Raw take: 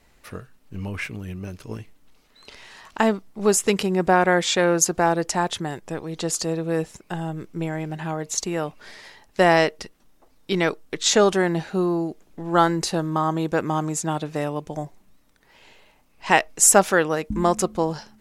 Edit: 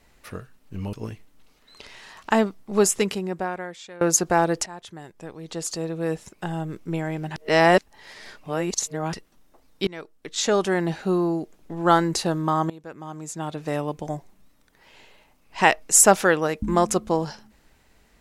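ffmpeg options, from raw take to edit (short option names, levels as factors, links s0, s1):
-filter_complex "[0:a]asplit=8[s0][s1][s2][s3][s4][s5][s6][s7];[s0]atrim=end=0.932[s8];[s1]atrim=start=1.608:end=4.69,asetpts=PTS-STARTPTS,afade=t=out:st=1.922:d=1.16:c=qua:silence=0.0749894[s9];[s2]atrim=start=4.69:end=5.34,asetpts=PTS-STARTPTS,afade=t=in:d=0.004:c=hsin:silence=0.0749894,afade=t=out:st=0.646:d=0.004:c=hsin:silence=0.112202[s10];[s3]atrim=start=5.34:end=8.042,asetpts=PTS-STARTPTS,afade=t=in:d=1.93:silence=0.112202[s11];[s4]atrim=start=8.038:end=9.812,asetpts=PTS-STARTPTS,areverse[s12];[s5]atrim=start=9.808:end=10.55,asetpts=PTS-STARTPTS,afade=t=out:st=0.738:d=0.004:c=hsin:silence=0.0794328[s13];[s6]atrim=start=10.55:end=13.38,asetpts=PTS-STARTPTS,afade=t=in:d=1.15:silence=0.0794328,afade=t=out:st=2.826:d=0.004:c=hsin:silence=0.11885[s14];[s7]atrim=start=13.38,asetpts=PTS-STARTPTS,afade=t=in:d=1.08:c=qua:silence=0.11885[s15];[s9][s10][s11]concat=n=3:v=0:a=1[s16];[s8][s16]acrossfade=d=0.004:c1=hsin:c2=hsin[s17];[s17][s12]acrossfade=d=0.004:c1=hsin:c2=hsin[s18];[s13][s14][s15]concat=n=3:v=0:a=1[s19];[s18][s19]acrossfade=d=0.004:c1=hsin:c2=hsin"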